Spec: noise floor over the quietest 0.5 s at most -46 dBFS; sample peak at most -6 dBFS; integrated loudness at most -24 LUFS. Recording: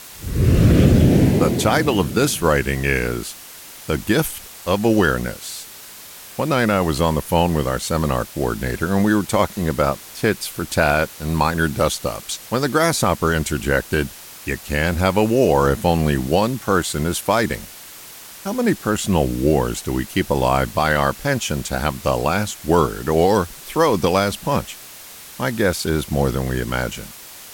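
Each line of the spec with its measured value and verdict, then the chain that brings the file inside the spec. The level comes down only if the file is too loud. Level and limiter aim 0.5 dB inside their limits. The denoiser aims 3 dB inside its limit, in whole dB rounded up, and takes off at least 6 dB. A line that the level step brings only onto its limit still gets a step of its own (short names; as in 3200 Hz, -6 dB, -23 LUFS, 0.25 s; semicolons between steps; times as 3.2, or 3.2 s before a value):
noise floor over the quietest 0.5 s -39 dBFS: fail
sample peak -4.0 dBFS: fail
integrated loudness -19.5 LUFS: fail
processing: denoiser 6 dB, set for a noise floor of -39 dBFS; gain -5 dB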